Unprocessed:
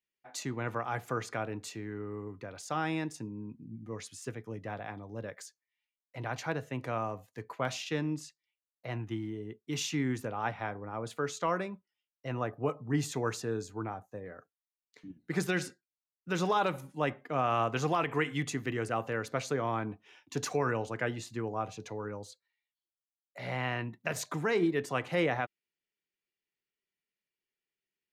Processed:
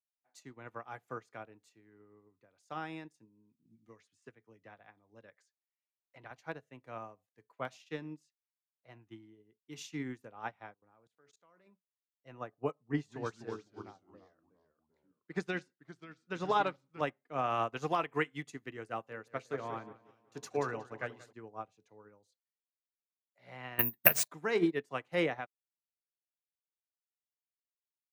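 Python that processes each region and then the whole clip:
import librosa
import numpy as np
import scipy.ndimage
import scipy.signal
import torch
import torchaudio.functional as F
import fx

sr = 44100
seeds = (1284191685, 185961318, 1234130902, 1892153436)

y = fx.chain(x, sr, fx.lowpass(hz=8900.0, slope=12),
    fx.dynamic_eq(hz=1700.0, q=0.79, threshold_db=-55.0, ratio=4.0, max_db=4),
    fx.band_squash(depth_pct=70), at=(3.65, 6.31))
y = fx.chain(y, sr, fx.level_steps(step_db=21),
    fx.doppler_dist(depth_ms=0.11), at=(10.74, 11.67))
y = fx.chain(y, sr, fx.echo_pitch(ms=194, semitones=-2, count=3, db_per_echo=-6.0),
    fx.air_absorb(metres=68.0), at=(12.71, 17.01))
y = fx.chain(y, sr, fx.hum_notches(base_hz=50, count=10),
    fx.echo_filtered(ms=183, feedback_pct=69, hz=4200.0, wet_db=-9.0), at=(19.04, 21.33))
y = fx.chain(y, sr, fx.high_shelf(hz=3100.0, db=5.5),
    fx.resample_bad(factor=3, down='none', up='zero_stuff'),
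    fx.band_squash(depth_pct=100), at=(23.79, 24.28))
y = fx.highpass(y, sr, hz=160.0, slope=6)
y = fx.upward_expand(y, sr, threshold_db=-44.0, expansion=2.5)
y = y * 10.0 ** (5.5 / 20.0)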